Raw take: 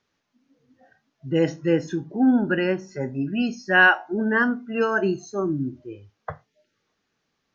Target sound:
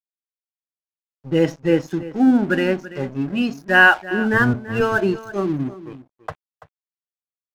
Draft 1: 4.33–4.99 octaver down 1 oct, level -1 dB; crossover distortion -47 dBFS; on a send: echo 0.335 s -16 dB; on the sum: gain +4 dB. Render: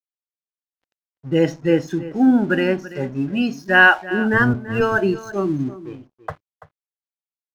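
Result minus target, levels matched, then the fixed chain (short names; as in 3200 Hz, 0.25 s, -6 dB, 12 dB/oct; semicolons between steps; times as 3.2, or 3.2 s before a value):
crossover distortion: distortion -7 dB
4.33–4.99 octaver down 1 oct, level -1 dB; crossover distortion -39.5 dBFS; on a send: echo 0.335 s -16 dB; on the sum: gain +4 dB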